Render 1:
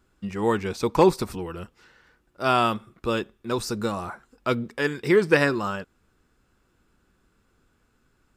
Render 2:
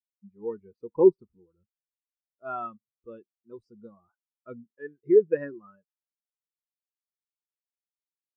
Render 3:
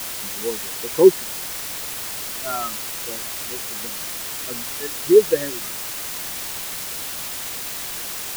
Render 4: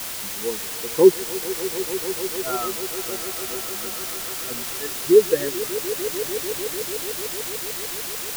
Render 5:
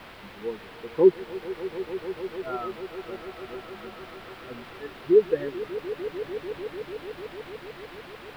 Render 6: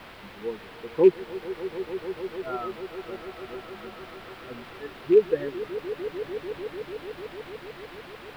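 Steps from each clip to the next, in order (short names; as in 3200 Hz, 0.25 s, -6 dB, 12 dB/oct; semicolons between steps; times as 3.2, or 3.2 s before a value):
spectral expander 2.5:1
requantised 6-bit, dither triangular; gain +6 dB
swelling echo 0.148 s, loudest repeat 5, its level -17 dB; gain -1 dB
air absorption 440 m; gain -3.5 dB
rattling part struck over -27 dBFS, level -29 dBFS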